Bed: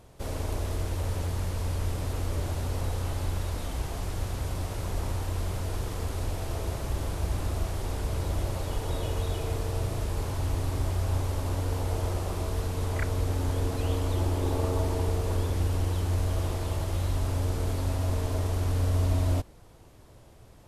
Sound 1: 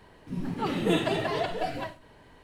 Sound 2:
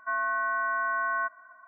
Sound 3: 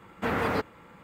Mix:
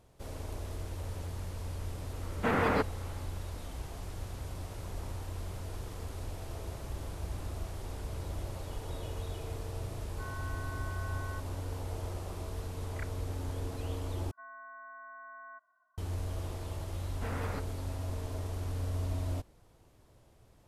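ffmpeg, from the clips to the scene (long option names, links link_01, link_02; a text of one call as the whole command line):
ffmpeg -i bed.wav -i cue0.wav -i cue1.wav -i cue2.wav -filter_complex "[3:a]asplit=2[link_01][link_02];[2:a]asplit=2[link_03][link_04];[0:a]volume=-9dB[link_05];[link_01]highshelf=frequency=5300:gain=-7.5[link_06];[link_04]highshelf=frequency=2100:gain=-11.5[link_07];[link_05]asplit=2[link_08][link_09];[link_08]atrim=end=14.314[link_10];[link_07]atrim=end=1.67,asetpts=PTS-STARTPTS,volume=-17.5dB[link_11];[link_09]atrim=start=15.976[link_12];[link_06]atrim=end=1.03,asetpts=PTS-STARTPTS,volume=-0.5dB,afade=type=in:duration=0.004:curve=hsin,afade=type=out:start_time=1.026:duration=0.004:curve=hsin,adelay=2210[link_13];[link_03]atrim=end=1.67,asetpts=PTS-STARTPTS,volume=-17.5dB,afade=type=in:duration=0.004:curve=hsin,afade=type=out:start_time=1.666:duration=0.004:curve=hsin,adelay=10120[link_14];[link_02]atrim=end=1.03,asetpts=PTS-STARTPTS,volume=-13dB,afade=type=in:duration=0.004:curve=hsin,afade=type=out:start_time=1.026:duration=0.004:curve=hsin,adelay=16990[link_15];[link_10][link_11]acrossfade=duration=0.004:curve1=hsin:curve2=hsin[link_16];[link_16][link_12]acrossfade=duration=0.004:curve1=hsin:curve2=hsin[link_17];[link_17][link_13][link_14][link_15]amix=inputs=4:normalize=0" out.wav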